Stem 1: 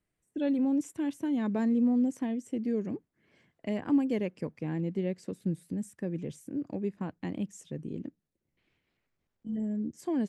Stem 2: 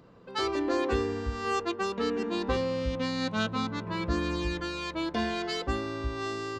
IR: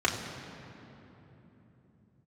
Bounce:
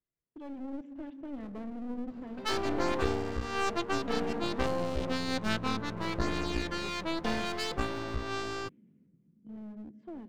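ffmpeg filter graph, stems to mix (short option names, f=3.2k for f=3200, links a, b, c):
-filter_complex "[0:a]lowpass=f=2.9k:w=0.5412,lowpass=f=2.9k:w=1.3066,bandreject=f=770:w=12,volume=-14dB,asplit=2[a][b];[b]volume=-21.5dB[c];[1:a]adelay=2100,volume=-3.5dB[d];[2:a]atrim=start_sample=2205[e];[c][e]afir=irnorm=-1:irlink=0[f];[a][d][f]amix=inputs=3:normalize=0,dynaudnorm=f=230:g=5:m=4.5dB,aeval=exprs='clip(val(0),-1,0.00668)':c=same"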